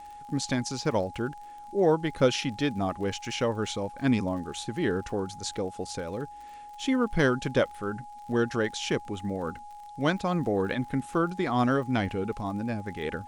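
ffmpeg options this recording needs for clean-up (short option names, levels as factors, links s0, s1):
-af "adeclick=t=4,bandreject=f=830:w=30,agate=range=0.0891:threshold=0.0141"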